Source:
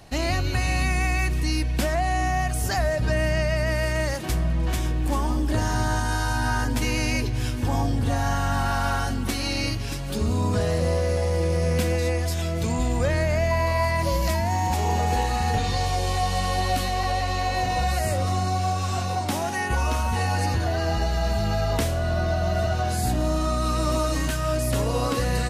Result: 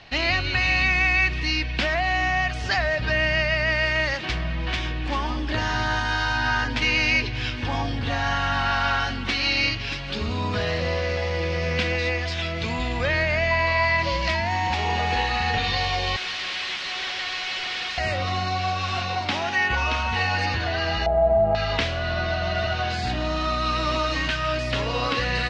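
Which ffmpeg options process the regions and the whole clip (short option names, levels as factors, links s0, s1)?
-filter_complex "[0:a]asettb=1/sr,asplit=3[s0][s1][s2];[s0]atrim=end=16.164[s3];[s1]atrim=start=16.16:end=17.98,asetpts=PTS-STARTPTS,afade=t=in:d=0.004:c=qsin,afade=t=out:st=1.816:d=0.004:c=qsin,highpass=140,tiltshelf=f=1400:g=-6,aeval=exprs='0.0355*(abs(mod(val(0)/0.0355+3,4)-2)-1)':c=same[s4];[s2]atrim=start=17.976[s5];[s3][s4]acrossfade=d=0.004:c1=hsin:c2=qsin[s6];[s6][s5]acrossfade=d=0.004:c1=qsin:c2=hsin,asettb=1/sr,asplit=3[s7][s8][s9];[s7]atrim=end=21.064[s10];[s8]atrim=start=21.06:end=21.55,asetpts=PTS-STARTPTS,afade=t=in:d=0.004:c=qsin,afade=t=out:st=0.486:d=0.004:c=qsin,lowpass=f=680:t=q:w=7.1,acrossover=split=390|3000[s11][s12][s13];[s12]acompressor=threshold=0.112:ratio=2:attack=3.2:release=140:knee=2.83:detection=peak[s14];[s11][s14][s13]amix=inputs=3:normalize=0[s15];[s9]atrim=start=21.546[s16];[s10][s15]acrossfade=d=0.004:c1=hsin:c2=qsin[s17];[s17][s16]acrossfade=d=0.004:c1=qsin:c2=hsin,lowpass=f=5100:w=0.5412,lowpass=f=5100:w=1.3066,equalizer=f=2600:t=o:w=2.4:g=14.5,volume=0.596"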